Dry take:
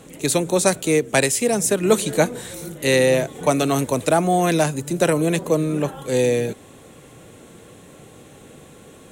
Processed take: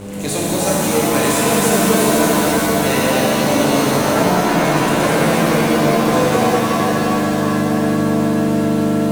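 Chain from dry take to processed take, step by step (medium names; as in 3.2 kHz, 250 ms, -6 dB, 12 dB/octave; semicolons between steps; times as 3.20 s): mains buzz 100 Hz, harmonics 5, -37 dBFS -1 dB/octave; in parallel at -8 dB: fuzz box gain 40 dB, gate -44 dBFS; 4.01–4.65 s: on the sum: low-pass 2.8 kHz; pitch-shifted reverb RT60 3.9 s, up +7 st, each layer -2 dB, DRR -5.5 dB; trim -9.5 dB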